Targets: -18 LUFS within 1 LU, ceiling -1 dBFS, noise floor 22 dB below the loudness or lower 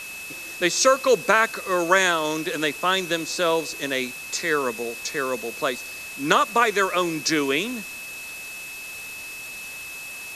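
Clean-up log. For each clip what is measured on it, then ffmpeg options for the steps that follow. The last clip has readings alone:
steady tone 2.6 kHz; tone level -35 dBFS; noise floor -37 dBFS; noise floor target -46 dBFS; loudness -23.5 LUFS; peak level -3.0 dBFS; loudness target -18.0 LUFS
-> -af "bandreject=f=2600:w=30"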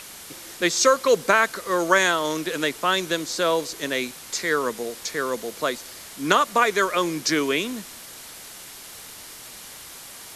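steady tone not found; noise floor -42 dBFS; noise floor target -45 dBFS
-> -af "afftdn=nr=6:nf=-42"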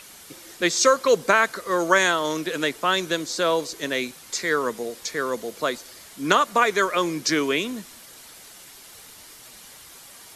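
noise floor -46 dBFS; loudness -22.5 LUFS; peak level -3.5 dBFS; loudness target -18.0 LUFS
-> -af "volume=1.68,alimiter=limit=0.891:level=0:latency=1"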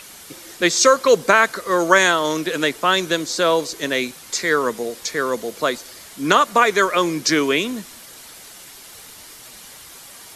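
loudness -18.5 LUFS; peak level -1.0 dBFS; noise floor -41 dBFS

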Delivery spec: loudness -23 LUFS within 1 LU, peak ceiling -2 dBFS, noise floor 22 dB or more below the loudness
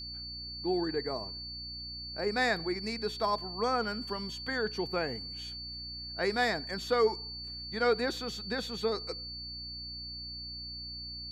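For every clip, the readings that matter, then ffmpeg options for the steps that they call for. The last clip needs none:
hum 60 Hz; highest harmonic 300 Hz; hum level -47 dBFS; steady tone 4.5 kHz; tone level -40 dBFS; loudness -33.5 LUFS; peak level -16.5 dBFS; loudness target -23.0 LUFS
-> -af "bandreject=f=60:t=h:w=4,bandreject=f=120:t=h:w=4,bandreject=f=180:t=h:w=4,bandreject=f=240:t=h:w=4,bandreject=f=300:t=h:w=4"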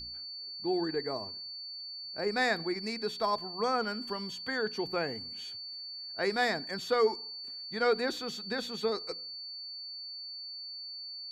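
hum not found; steady tone 4.5 kHz; tone level -40 dBFS
-> -af "bandreject=f=4500:w=30"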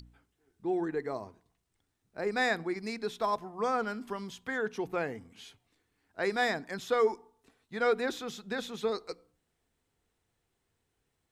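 steady tone not found; loudness -33.0 LUFS; peak level -16.5 dBFS; loudness target -23.0 LUFS
-> -af "volume=3.16"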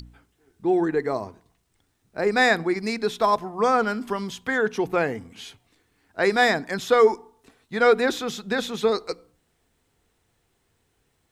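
loudness -23.0 LUFS; peak level -6.5 dBFS; noise floor -70 dBFS

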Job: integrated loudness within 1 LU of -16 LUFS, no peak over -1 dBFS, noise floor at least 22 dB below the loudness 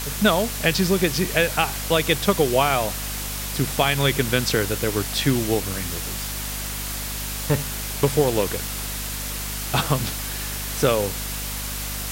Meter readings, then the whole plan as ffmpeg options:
hum 50 Hz; highest harmonic 250 Hz; hum level -31 dBFS; noise floor -29 dBFS; noise floor target -45 dBFS; loudness -23.0 LUFS; peak level -4.0 dBFS; loudness target -16.0 LUFS
-> -af "bandreject=f=50:t=h:w=6,bandreject=f=100:t=h:w=6,bandreject=f=150:t=h:w=6,bandreject=f=200:t=h:w=6,bandreject=f=250:t=h:w=6"
-af "afftdn=nr=16:nf=-29"
-af "volume=2.24,alimiter=limit=0.891:level=0:latency=1"

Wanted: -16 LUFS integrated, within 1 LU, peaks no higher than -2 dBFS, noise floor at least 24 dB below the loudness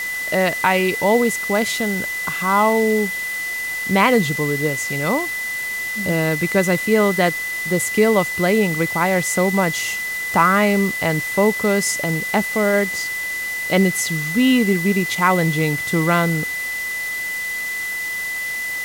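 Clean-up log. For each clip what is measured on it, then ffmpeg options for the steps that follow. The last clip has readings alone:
steady tone 2 kHz; tone level -23 dBFS; noise floor -26 dBFS; noise floor target -43 dBFS; loudness -18.5 LUFS; peak level -2.5 dBFS; loudness target -16.0 LUFS
-> -af "bandreject=f=2000:w=30"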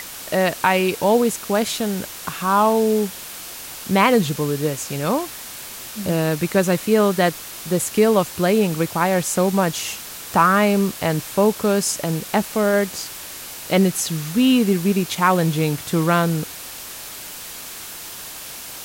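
steady tone not found; noise floor -35 dBFS; noise floor target -44 dBFS
-> -af "afftdn=nr=9:nf=-35"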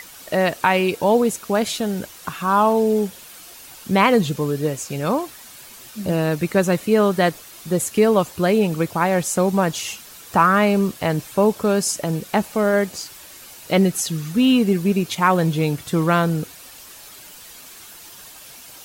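noise floor -42 dBFS; noise floor target -44 dBFS
-> -af "afftdn=nr=6:nf=-42"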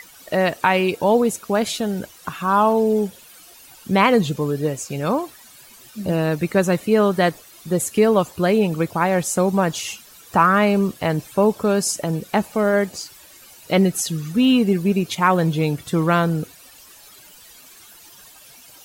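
noise floor -46 dBFS; loudness -19.5 LUFS; peak level -3.5 dBFS; loudness target -16.0 LUFS
-> -af "volume=1.5,alimiter=limit=0.794:level=0:latency=1"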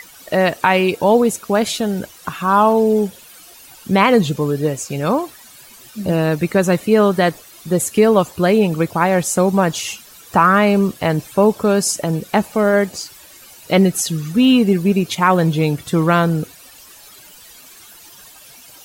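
loudness -16.5 LUFS; peak level -2.0 dBFS; noise floor -43 dBFS

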